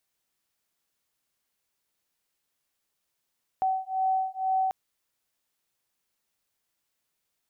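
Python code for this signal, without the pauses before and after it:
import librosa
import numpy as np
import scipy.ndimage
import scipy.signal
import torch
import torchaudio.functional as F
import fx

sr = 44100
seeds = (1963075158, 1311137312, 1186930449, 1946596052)

y = fx.two_tone_beats(sr, length_s=1.09, hz=758.0, beat_hz=2.1, level_db=-27.5)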